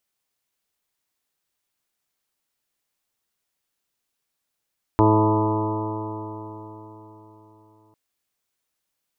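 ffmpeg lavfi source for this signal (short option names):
-f lavfi -i "aevalsrc='0.126*pow(10,-3*t/4.09)*sin(2*PI*107.04*t)+0.0376*pow(10,-3*t/4.09)*sin(2*PI*214.33*t)+0.15*pow(10,-3*t/4.09)*sin(2*PI*322.1*t)+0.0891*pow(10,-3*t/4.09)*sin(2*PI*430.59*t)+0.0316*pow(10,-3*t/4.09)*sin(2*PI*540.06*t)+0.0562*pow(10,-3*t/4.09)*sin(2*PI*650.72*t)+0.0178*pow(10,-3*t/4.09)*sin(2*PI*762.82*t)+0.0891*pow(10,-3*t/4.09)*sin(2*PI*876.57*t)+0.0891*pow(10,-3*t/4.09)*sin(2*PI*992.2*t)+0.02*pow(10,-3*t/4.09)*sin(2*PI*1109.92*t)+0.0224*pow(10,-3*t/4.09)*sin(2*PI*1229.93*t)':d=2.95:s=44100"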